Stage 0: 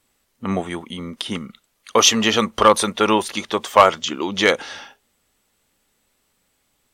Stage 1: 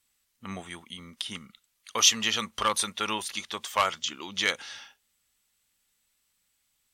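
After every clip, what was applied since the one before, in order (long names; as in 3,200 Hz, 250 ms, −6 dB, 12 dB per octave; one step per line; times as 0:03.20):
guitar amp tone stack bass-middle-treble 5-5-5
level +1.5 dB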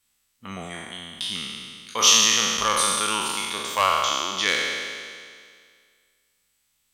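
peak hold with a decay on every bin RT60 2.02 s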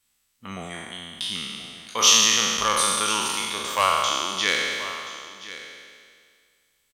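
single-tap delay 1,028 ms −15.5 dB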